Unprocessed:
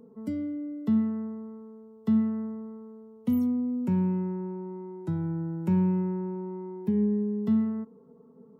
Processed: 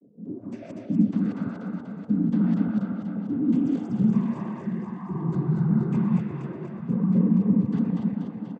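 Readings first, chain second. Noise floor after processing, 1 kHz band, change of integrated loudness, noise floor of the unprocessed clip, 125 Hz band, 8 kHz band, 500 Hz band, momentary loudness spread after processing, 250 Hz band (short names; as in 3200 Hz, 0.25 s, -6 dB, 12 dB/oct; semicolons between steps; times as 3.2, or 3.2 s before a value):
-41 dBFS, +2.5 dB, +4.0 dB, -54 dBFS, +6.0 dB, n/a, -1.5 dB, 13 LU, +4.0 dB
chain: regenerating reverse delay 0.121 s, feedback 82%, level 0 dB; bands offset in time lows, highs 0.25 s, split 410 Hz; noise vocoder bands 16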